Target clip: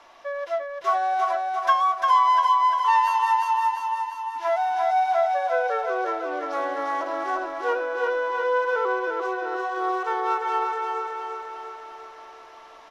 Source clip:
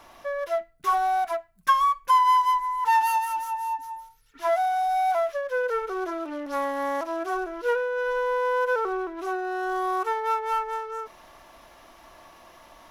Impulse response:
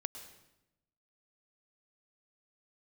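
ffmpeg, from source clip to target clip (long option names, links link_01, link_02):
-filter_complex "[0:a]acrossover=split=340 7000:gain=0.2 1 0.112[link_01][link_02][link_03];[link_01][link_02][link_03]amix=inputs=3:normalize=0,asplit=2[link_04][link_05];[link_05]aecho=0:1:347|694|1041|1388|1735|2082|2429|2776:0.668|0.394|0.233|0.137|0.081|0.0478|0.0282|0.0166[link_06];[link_04][link_06]amix=inputs=2:normalize=0"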